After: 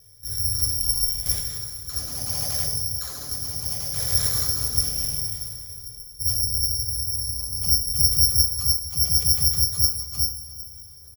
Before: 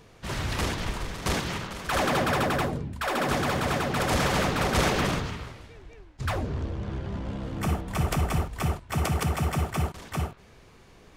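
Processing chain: moving spectral ripple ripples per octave 0.51, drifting -0.75 Hz, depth 7 dB; resonant low shelf 150 Hz +12 dB, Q 1.5; outdoor echo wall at 63 m, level -15 dB; rotary speaker horn 0.65 Hz, later 6.7 Hz, at 8.65; careless resampling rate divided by 8×, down filtered, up zero stuff; two-slope reverb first 0.42 s, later 4 s, from -18 dB, DRR 2.5 dB; gain -16 dB

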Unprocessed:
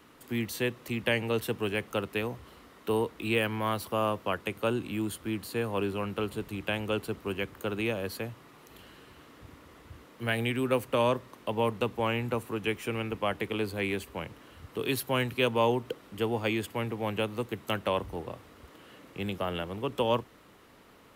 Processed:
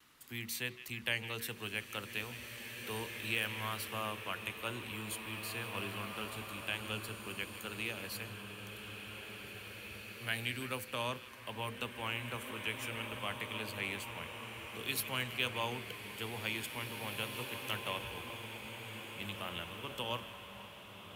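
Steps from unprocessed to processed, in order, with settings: de-hum 46.49 Hz, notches 12; gate with hold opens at -53 dBFS; passive tone stack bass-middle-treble 5-5-5; delay with a stepping band-pass 0.163 s, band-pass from 2600 Hz, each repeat -0.7 oct, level -12 dB; bloom reverb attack 2.44 s, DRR 4.5 dB; gain +4.5 dB

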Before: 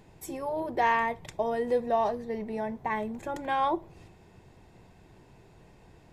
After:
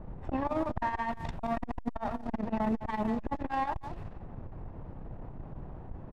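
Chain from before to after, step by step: minimum comb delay 1.1 ms; added noise pink -55 dBFS; low shelf 190 Hz -7 dB; low-pass opened by the level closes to 800 Hz, open at -29.5 dBFS; compressor 10:1, threshold -34 dBFS, peak gain reduction 13.5 dB; tilt -3 dB/oct; echo 0.175 s -10 dB; core saturation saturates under 310 Hz; gain +7 dB

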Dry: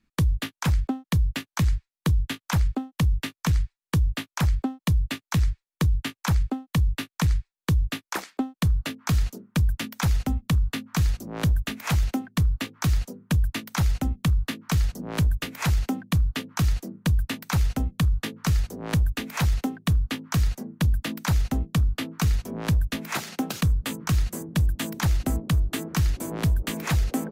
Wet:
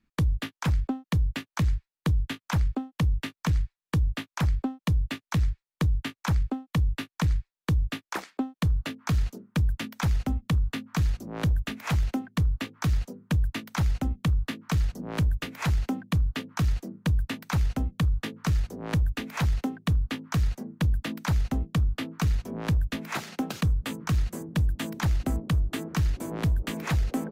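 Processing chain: high shelf 5100 Hz -7.5 dB; in parallel at -6.5 dB: one-sided clip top -23 dBFS, bottom -18 dBFS; on the sum: gain -5 dB

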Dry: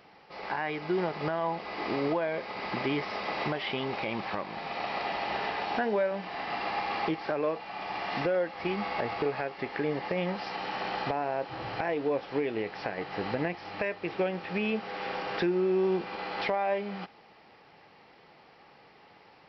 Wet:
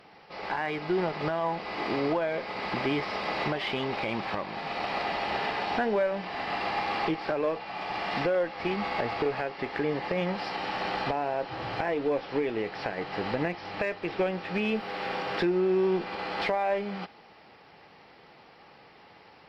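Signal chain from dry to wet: in parallel at -10 dB: one-sided clip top -37.5 dBFS; 14.75–15.38 on the sum: requantised 12-bit, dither none; AAC 64 kbps 44100 Hz

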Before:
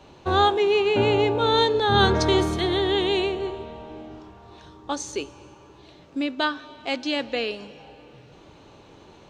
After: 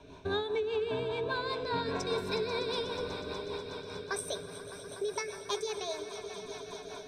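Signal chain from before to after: speed glide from 102% -> 161%; ripple EQ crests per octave 1.6, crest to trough 12 dB; compressor, threshold -27 dBFS, peak gain reduction 13.5 dB; swelling echo 0.122 s, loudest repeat 5, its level -15 dB; rotary speaker horn 5 Hz; gain -2.5 dB

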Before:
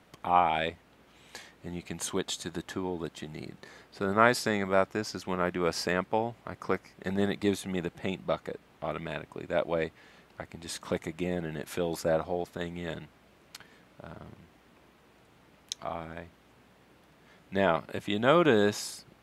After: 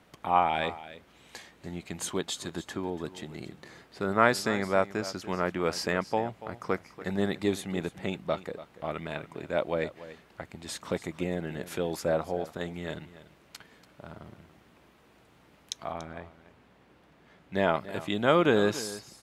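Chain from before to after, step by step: 15.92–17.54 high shelf 5300 Hz -9 dB; echo 0.287 s -15.5 dB

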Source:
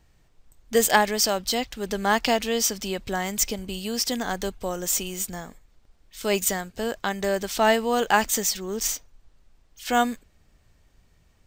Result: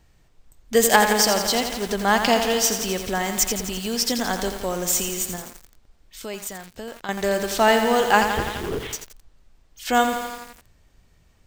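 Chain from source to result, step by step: 5.36–7.09 compressor 2:1, threshold -42 dBFS, peak gain reduction 13 dB; 8.27–8.93 LPC vocoder at 8 kHz whisper; lo-fi delay 85 ms, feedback 80%, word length 6-bit, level -7 dB; gain +2.5 dB

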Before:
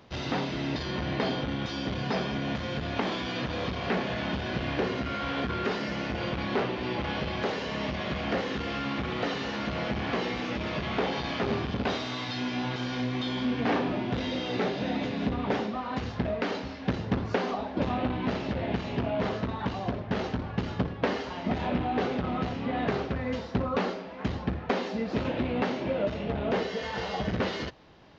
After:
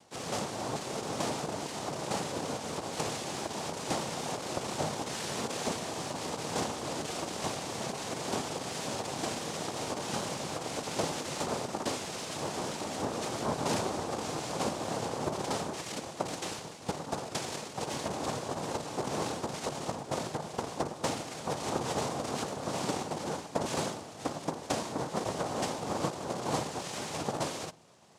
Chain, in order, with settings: 15.74–18.06 minimum comb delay 0.98 ms; noise vocoder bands 2; reverb RT60 0.65 s, pre-delay 3 ms, DRR 19.5 dB; gain -4.5 dB

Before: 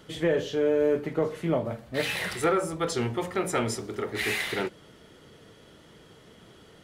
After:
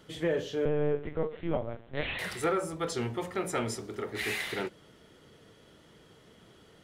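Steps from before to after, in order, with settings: 0.65–2.19 LPC vocoder at 8 kHz pitch kept; gain -4.5 dB

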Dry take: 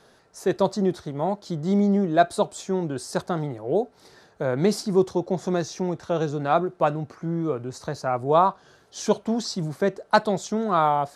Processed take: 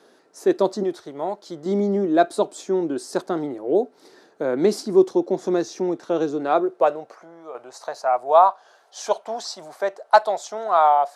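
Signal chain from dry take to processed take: 0.83–1.66 bell 250 Hz -10 dB 1.3 oct; 7.15–7.55 compressor 1.5:1, threshold -41 dBFS, peak gain reduction 7.5 dB; high-pass sweep 300 Hz -> 700 Hz, 6.29–7.35; gain -1 dB

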